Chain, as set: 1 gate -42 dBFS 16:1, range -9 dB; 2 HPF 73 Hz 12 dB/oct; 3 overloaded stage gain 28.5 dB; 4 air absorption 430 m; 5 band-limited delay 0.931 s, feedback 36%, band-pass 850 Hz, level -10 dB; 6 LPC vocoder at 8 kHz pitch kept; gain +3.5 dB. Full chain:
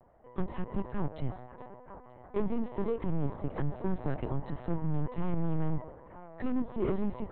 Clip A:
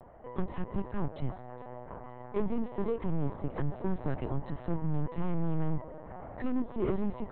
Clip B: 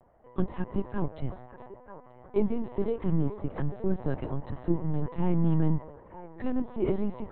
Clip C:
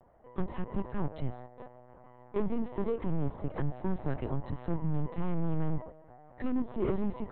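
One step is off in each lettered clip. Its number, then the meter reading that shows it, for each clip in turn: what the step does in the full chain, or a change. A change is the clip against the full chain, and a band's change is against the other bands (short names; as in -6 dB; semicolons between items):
1, momentary loudness spread change -4 LU; 3, distortion -9 dB; 5, momentary loudness spread change -6 LU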